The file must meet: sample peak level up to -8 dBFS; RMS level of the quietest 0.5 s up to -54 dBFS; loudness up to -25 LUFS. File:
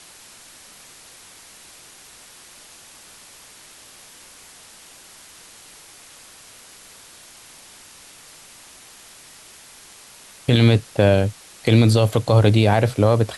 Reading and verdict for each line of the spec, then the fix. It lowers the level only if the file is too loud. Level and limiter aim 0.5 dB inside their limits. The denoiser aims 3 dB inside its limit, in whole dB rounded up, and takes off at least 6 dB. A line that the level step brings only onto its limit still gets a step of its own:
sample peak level -4.5 dBFS: fail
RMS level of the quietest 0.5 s -46 dBFS: fail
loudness -17.5 LUFS: fail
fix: noise reduction 6 dB, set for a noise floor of -46 dBFS; trim -8 dB

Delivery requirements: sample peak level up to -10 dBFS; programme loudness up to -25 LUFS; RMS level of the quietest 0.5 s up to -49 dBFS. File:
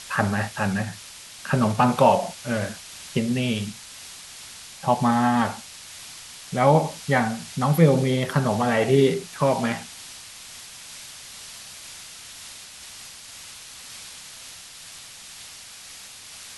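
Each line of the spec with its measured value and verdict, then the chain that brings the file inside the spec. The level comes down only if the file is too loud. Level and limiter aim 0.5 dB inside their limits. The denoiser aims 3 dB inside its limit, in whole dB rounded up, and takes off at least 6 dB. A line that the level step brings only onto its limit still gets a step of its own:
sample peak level -4.5 dBFS: fail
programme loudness -22.5 LUFS: fail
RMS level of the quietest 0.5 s -43 dBFS: fail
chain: noise reduction 6 dB, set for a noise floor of -43 dBFS; trim -3 dB; peak limiter -10.5 dBFS

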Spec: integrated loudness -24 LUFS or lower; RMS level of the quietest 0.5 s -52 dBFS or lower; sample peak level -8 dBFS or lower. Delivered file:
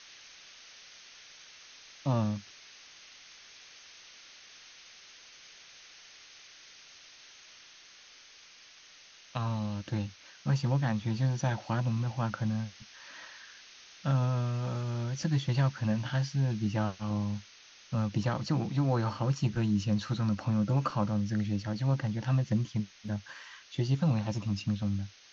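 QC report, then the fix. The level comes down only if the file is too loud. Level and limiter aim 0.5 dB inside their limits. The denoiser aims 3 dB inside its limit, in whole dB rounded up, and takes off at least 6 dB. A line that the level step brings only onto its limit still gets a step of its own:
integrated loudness -31.5 LUFS: pass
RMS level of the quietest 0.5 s -55 dBFS: pass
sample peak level -16.0 dBFS: pass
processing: none needed

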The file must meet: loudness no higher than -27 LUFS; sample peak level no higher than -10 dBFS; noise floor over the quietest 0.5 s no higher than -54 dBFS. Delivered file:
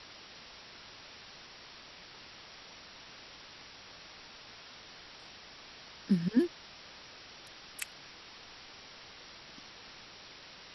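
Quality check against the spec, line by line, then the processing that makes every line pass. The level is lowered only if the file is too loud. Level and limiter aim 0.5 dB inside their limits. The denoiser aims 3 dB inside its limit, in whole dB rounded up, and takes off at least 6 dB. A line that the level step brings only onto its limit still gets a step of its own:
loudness -42.0 LUFS: pass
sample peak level -16.0 dBFS: pass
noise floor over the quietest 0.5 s -52 dBFS: fail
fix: noise reduction 6 dB, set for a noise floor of -52 dBFS

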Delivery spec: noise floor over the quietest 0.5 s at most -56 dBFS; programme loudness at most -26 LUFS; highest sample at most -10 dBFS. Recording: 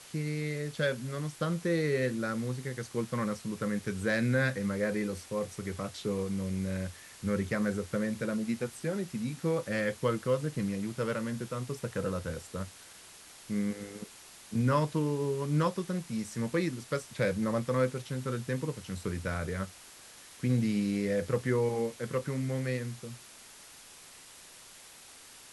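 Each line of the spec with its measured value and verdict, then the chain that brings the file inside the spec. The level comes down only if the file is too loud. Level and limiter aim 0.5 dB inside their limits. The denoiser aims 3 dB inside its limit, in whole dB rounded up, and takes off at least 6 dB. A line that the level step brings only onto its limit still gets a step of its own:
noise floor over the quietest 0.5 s -52 dBFS: fail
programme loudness -32.5 LUFS: pass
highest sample -15.0 dBFS: pass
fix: noise reduction 7 dB, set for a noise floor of -52 dBFS

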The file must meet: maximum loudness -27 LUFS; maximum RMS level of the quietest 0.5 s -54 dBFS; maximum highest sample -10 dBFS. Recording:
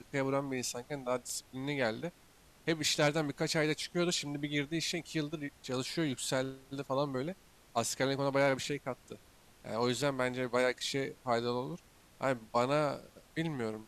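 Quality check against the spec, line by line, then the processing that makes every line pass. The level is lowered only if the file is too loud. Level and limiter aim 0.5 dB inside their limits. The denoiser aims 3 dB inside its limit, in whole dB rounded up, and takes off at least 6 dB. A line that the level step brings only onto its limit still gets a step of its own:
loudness -34.5 LUFS: pass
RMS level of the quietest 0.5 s -62 dBFS: pass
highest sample -16.5 dBFS: pass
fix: none needed

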